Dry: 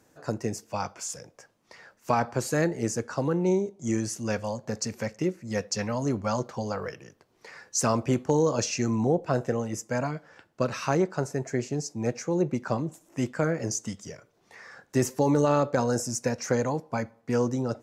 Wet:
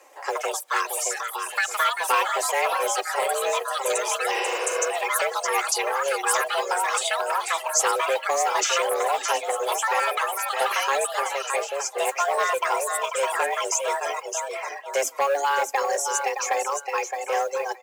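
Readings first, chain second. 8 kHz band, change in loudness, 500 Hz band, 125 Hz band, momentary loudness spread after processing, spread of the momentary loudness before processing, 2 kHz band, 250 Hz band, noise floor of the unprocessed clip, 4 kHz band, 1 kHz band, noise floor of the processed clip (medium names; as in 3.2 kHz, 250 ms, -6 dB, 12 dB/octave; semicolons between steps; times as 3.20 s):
+8.0 dB, +4.0 dB, +2.0 dB, under -35 dB, 5 LU, 10 LU, +12.0 dB, under -15 dB, -66 dBFS, +11.0 dB, +10.5 dB, -38 dBFS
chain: comb 3.7 ms, depth 50%; frequency shift +270 Hz; graphic EQ with 31 bands 400 Hz -3 dB, 1 kHz +5 dB, 2.5 kHz +8 dB; on a send: feedback delay 617 ms, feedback 28%, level -7 dB; on the sum: reverb removal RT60 0.9 s; ever faster or slower copies 128 ms, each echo +4 st, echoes 2; modulation noise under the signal 32 dB; in parallel at -2 dB: compression, threshold -32 dBFS, peak gain reduction 15.5 dB; on the sum: dynamic bell 800 Hz, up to -6 dB, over -34 dBFS, Q 0.93; high-pass 58 Hz; spectral replace 4.37–4.83 s, 300–5900 Hz both; transformer saturation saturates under 1.4 kHz; trim +3 dB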